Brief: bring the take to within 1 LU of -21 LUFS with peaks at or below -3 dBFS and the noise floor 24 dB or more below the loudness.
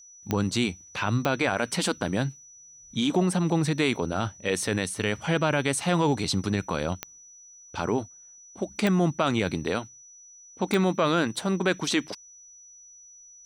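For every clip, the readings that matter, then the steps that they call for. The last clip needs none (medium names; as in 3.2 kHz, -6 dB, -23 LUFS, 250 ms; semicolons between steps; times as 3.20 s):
clicks found 5; steady tone 5.9 kHz; tone level -48 dBFS; loudness -26.5 LUFS; peak level -10.0 dBFS; loudness target -21.0 LUFS
-> de-click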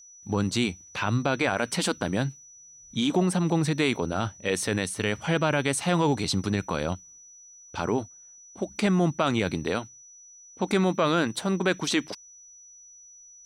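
clicks found 0; steady tone 5.9 kHz; tone level -48 dBFS
-> band-stop 5.9 kHz, Q 30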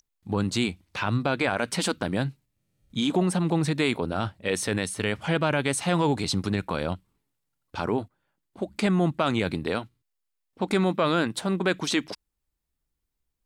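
steady tone not found; loudness -26.5 LUFS; peak level -12.0 dBFS; loudness target -21.0 LUFS
-> trim +5.5 dB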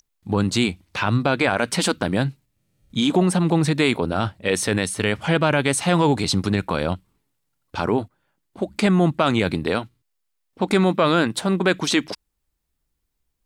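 loudness -21.0 LUFS; peak level -6.5 dBFS; noise floor -75 dBFS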